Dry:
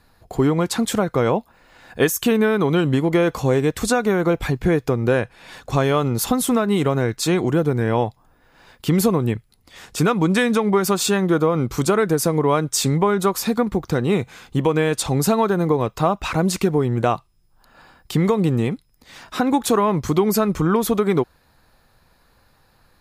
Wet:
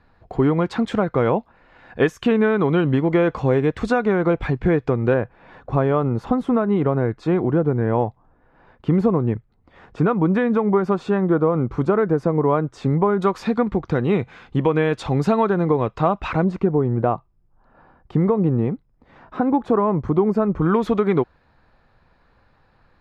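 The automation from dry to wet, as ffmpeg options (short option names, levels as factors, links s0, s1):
-af "asetnsamples=n=441:p=0,asendcmd='5.14 lowpass f 1300;13.22 lowpass f 2600;16.44 lowpass f 1100;20.62 lowpass f 2600',lowpass=2400"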